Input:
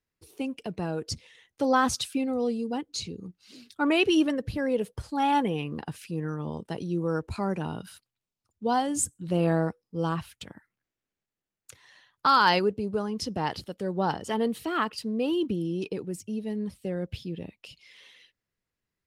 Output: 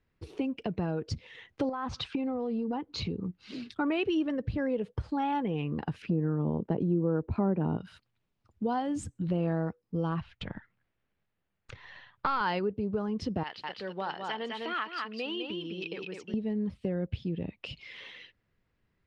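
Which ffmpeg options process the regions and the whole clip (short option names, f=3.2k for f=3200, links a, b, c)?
-filter_complex "[0:a]asettb=1/sr,asplit=3[a][b][c];[a]atrim=end=1.694[d];[b]atrim=start=1.69:end=3.25,asetpts=PTS-STARTPTS,afade=t=in:d=0.004:c=qsin,afade=t=out:st=1.556:d=0.004:c=qsin,lowpass=4.8k,equalizer=f=970:t=o:w=1:g=8,acompressor=threshold=-29dB:ratio=10:attack=3.2:release=140:knee=1:detection=peak[e];[c]atrim=start=3.246[f];[d][e]acrossfade=d=0.004:c1=hsin:c2=qsin[g];[g][f]acrossfade=d=0.004:c1=qsin:c2=hsin,asettb=1/sr,asplit=3[h][i][j];[h]atrim=end=6.024[k];[i]atrim=start=6.02:end=7.77,asetpts=PTS-STARTPTS,afade=t=in:d=0.004:c=qsin,afade=t=out:st=1.746:d=0.004:c=qsin,lowpass=f=2.3k:p=1,equalizer=f=310:w=0.3:g=11[l];[j]atrim=start=7.766[m];[k][l]acrossfade=d=0.004:c1=hsin:c2=qsin[n];[n][m]acrossfade=d=0.004:c1=qsin:c2=hsin,asettb=1/sr,asplit=3[o][p][q];[o]atrim=end=10.204[r];[p]atrim=start=10.2:end=12.41,asetpts=PTS-STARTPTS,afade=t=in:d=0.004:c=qsin,afade=t=out:st=2.206:d=0.004:c=qsin,aeval=exprs='if(lt(val(0),0),0.708*val(0),val(0))':c=same,lowpass=5.1k,equalizer=f=310:t=o:w=0.89:g=-5.5[s];[q]atrim=start=12.406[t];[r][s]acrossfade=d=0.004:c1=hsin:c2=qsin[u];[u][t]acrossfade=d=0.004:c1=qsin:c2=hsin,asettb=1/sr,asplit=3[v][w][x];[v]atrim=end=13.434[y];[w]atrim=start=13.43:end=16.34,asetpts=PTS-STARTPTS,afade=t=in:d=0.004:c=qsin,afade=t=out:st=2.906:d=0.004:c=qsin,bandpass=f=3k:t=q:w=0.89,aecho=1:1:205:0.531,atrim=end_sample=128331[z];[x]atrim=start=16.336[aa];[y][z]acrossfade=d=0.004:c1=hsin:c2=qsin[ab];[ab][aa]acrossfade=d=0.004:c1=qsin:c2=hsin,lowpass=3k,lowshelf=f=240:g=5.5,acompressor=threshold=-42dB:ratio=3,volume=9dB"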